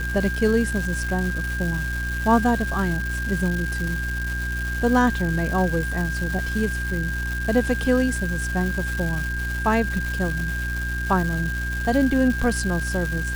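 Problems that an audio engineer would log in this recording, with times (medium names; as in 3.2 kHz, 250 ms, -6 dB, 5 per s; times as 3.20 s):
crackle 590 per s -27 dBFS
hum 60 Hz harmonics 6 -28 dBFS
whine 1.6 kHz -28 dBFS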